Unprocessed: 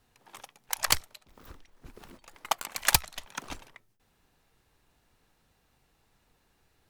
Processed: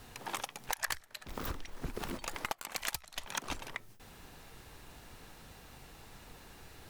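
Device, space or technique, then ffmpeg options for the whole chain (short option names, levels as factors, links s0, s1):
serial compression, leveller first: -filter_complex "[0:a]acompressor=threshold=0.0126:ratio=2,acompressor=threshold=0.00316:ratio=10,asettb=1/sr,asplit=3[s0][s1][s2];[s0]atrim=end=0.734[s3];[s1]atrim=start=0.73:end=1.28,asetpts=PTS-STARTPTS,afade=t=in:d=0.004:c=qsin,afade=t=out:st=0.546:d=0.004:c=qsin,equalizer=f=1700:w=3.6:g=10.5[s4];[s2]atrim=start=1.276[s5];[s3][s4]acrossfade=d=0.004:c1=hsin:c2=qsin[s6];[s6][s5]acrossfade=d=0.004:c1=qsin:c2=hsin,volume=6.31"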